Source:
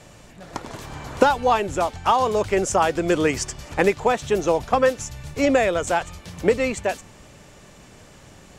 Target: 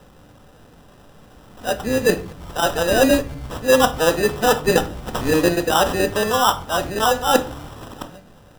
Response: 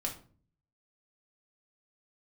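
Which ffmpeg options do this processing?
-filter_complex "[0:a]areverse,acrusher=samples=20:mix=1:aa=0.000001,dynaudnorm=f=260:g=13:m=11.5dB,asplit=2[a][b];[1:a]atrim=start_sample=2205[c];[b][c]afir=irnorm=-1:irlink=0,volume=-2dB[d];[a][d]amix=inputs=2:normalize=0,volume=-7dB"

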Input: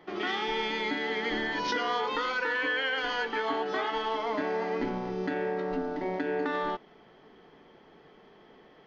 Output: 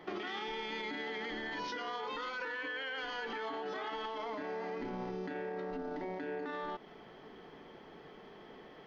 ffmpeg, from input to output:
-af "alimiter=level_in=6dB:limit=-24dB:level=0:latency=1:release=44,volume=-6dB,acompressor=threshold=-39dB:ratio=6,volume=2.5dB"

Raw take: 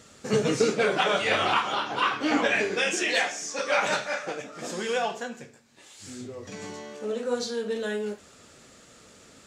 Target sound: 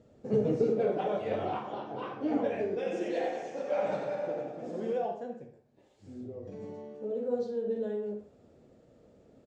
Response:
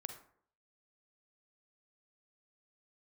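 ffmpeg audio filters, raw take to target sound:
-filter_complex "[0:a]firequalizer=gain_entry='entry(600,0);entry(1200,-17);entry(10000,-30)':delay=0.05:min_phase=1,asettb=1/sr,asplit=3[a][b][c];[a]atrim=end=2.764[d];[b]atrim=start=2.76:end=4.93,asetpts=PTS-STARTPTS,afade=t=in:d=0.004:c=qsin,afade=t=out:st=2.166:d=0.004:c=qsin,aecho=1:1:90|193.5|312.5|449.4|606.8:0.631|0.398|0.251|0.158|0.1,atrim=end_sample=95697[e];[c]atrim=start=4.926[f];[d][e]acrossfade=d=0.004:c1=hsin:c2=qsin[g];[g][f]acrossfade=d=0.004:c1=qsin:c2=hsin[h];[1:a]atrim=start_sample=2205,afade=t=out:st=0.19:d=0.01,atrim=end_sample=8820[i];[h][i]afir=irnorm=-1:irlink=0"

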